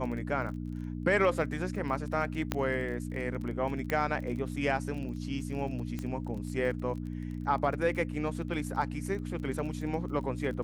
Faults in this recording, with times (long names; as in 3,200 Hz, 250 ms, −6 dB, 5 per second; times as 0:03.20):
surface crackle 24 per second −39 dBFS
mains hum 60 Hz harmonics 5 −37 dBFS
0:02.52: click −14 dBFS
0:03.90: click −18 dBFS
0:05.99: click −23 dBFS